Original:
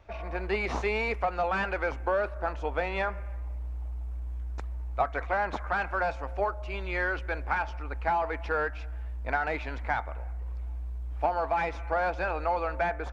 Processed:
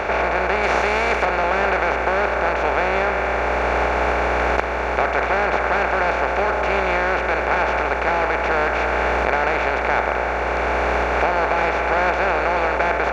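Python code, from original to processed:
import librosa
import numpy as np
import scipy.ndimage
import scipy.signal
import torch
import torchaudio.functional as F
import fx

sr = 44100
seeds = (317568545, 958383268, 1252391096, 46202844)

y = fx.bin_compress(x, sr, power=0.2)
y = fx.recorder_agc(y, sr, target_db=-8.5, rise_db_per_s=7.1, max_gain_db=30)
y = fx.high_shelf(y, sr, hz=4300.0, db=8.5, at=(0.63, 1.25))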